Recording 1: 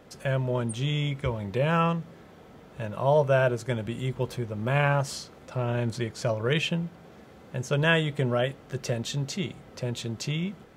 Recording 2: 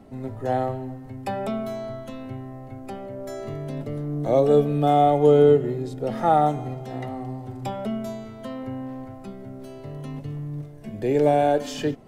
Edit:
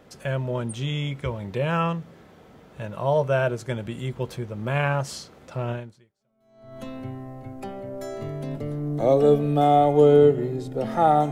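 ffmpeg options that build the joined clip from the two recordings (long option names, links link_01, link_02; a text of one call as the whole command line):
ffmpeg -i cue0.wav -i cue1.wav -filter_complex "[0:a]apad=whole_dur=11.31,atrim=end=11.31,atrim=end=6.8,asetpts=PTS-STARTPTS[link_01];[1:a]atrim=start=0.98:end=6.57,asetpts=PTS-STARTPTS[link_02];[link_01][link_02]acrossfade=duration=1.08:curve1=exp:curve2=exp" out.wav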